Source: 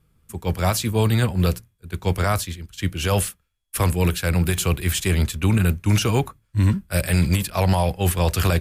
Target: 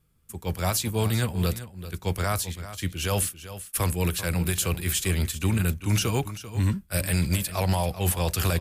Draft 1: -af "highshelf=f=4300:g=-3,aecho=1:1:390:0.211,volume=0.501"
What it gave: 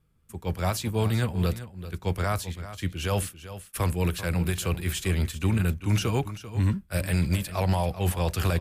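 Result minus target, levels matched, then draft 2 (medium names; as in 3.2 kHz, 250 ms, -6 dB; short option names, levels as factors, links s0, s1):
8 kHz band -6.5 dB
-af "highshelf=f=4300:g=6.5,aecho=1:1:390:0.211,volume=0.501"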